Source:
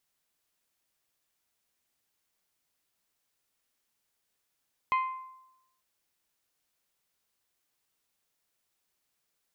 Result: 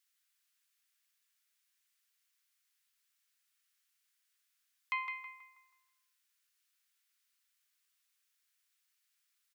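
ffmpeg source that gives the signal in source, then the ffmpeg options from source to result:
-f lavfi -i "aevalsrc='0.0794*pow(10,-3*t/0.9)*sin(2*PI*1040*t)+0.0316*pow(10,-3*t/0.554)*sin(2*PI*2080*t)+0.0126*pow(10,-3*t/0.488)*sin(2*PI*2496*t)+0.00501*pow(10,-3*t/0.417)*sin(2*PI*3120*t)+0.002*pow(10,-3*t/0.341)*sin(2*PI*4160*t)':duration=0.89:sample_rate=44100"
-filter_complex "[0:a]highpass=frequency=1400:width=0.5412,highpass=frequency=1400:width=1.3066,asplit=2[link_01][link_02];[link_02]adelay=161,lowpass=frequency=2100:poles=1,volume=-3.5dB,asplit=2[link_03][link_04];[link_04]adelay=161,lowpass=frequency=2100:poles=1,volume=0.46,asplit=2[link_05][link_06];[link_06]adelay=161,lowpass=frequency=2100:poles=1,volume=0.46,asplit=2[link_07][link_08];[link_08]adelay=161,lowpass=frequency=2100:poles=1,volume=0.46,asplit=2[link_09][link_10];[link_10]adelay=161,lowpass=frequency=2100:poles=1,volume=0.46,asplit=2[link_11][link_12];[link_12]adelay=161,lowpass=frequency=2100:poles=1,volume=0.46[link_13];[link_01][link_03][link_05][link_07][link_09][link_11][link_13]amix=inputs=7:normalize=0"

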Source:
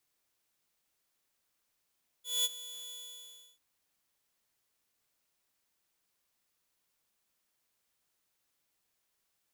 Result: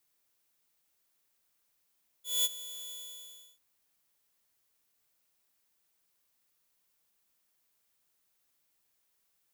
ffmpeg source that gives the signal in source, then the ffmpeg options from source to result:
-f lavfi -i "aevalsrc='0.0668*(2*mod(3430*t,1)-1)':duration=1.346:sample_rate=44100,afade=type=in:duration=0.207,afade=type=out:start_time=0.207:duration=0.032:silence=0.141,afade=type=out:start_time=0.66:duration=0.686"
-af "highshelf=frequency=11000:gain=7"

